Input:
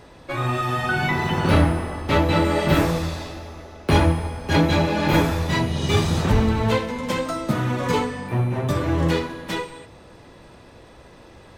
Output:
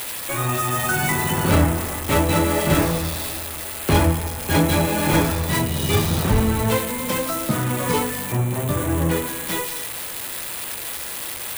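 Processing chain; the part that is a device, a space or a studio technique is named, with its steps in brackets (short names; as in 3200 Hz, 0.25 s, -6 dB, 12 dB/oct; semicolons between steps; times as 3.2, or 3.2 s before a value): 8.53–9.26 air absorption 210 m; budget class-D amplifier (switching dead time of 0.082 ms; switching spikes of -13 dBFS)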